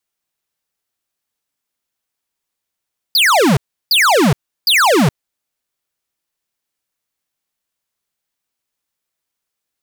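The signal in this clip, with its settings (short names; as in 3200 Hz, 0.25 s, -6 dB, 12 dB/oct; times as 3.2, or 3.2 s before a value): burst of laser zaps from 5000 Hz, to 120 Hz, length 0.42 s square, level -11 dB, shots 3, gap 0.34 s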